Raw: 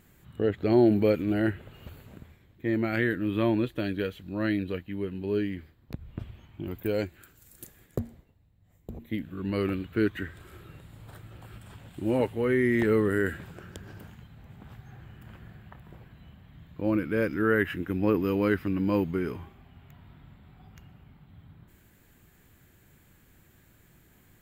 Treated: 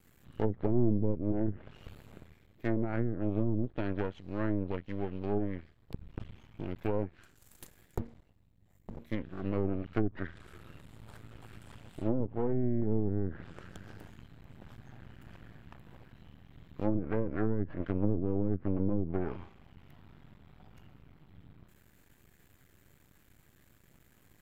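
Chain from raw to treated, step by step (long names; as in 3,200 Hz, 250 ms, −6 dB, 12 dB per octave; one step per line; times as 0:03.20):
half-wave rectification
treble cut that deepens with the level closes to 310 Hz, closed at −22.5 dBFS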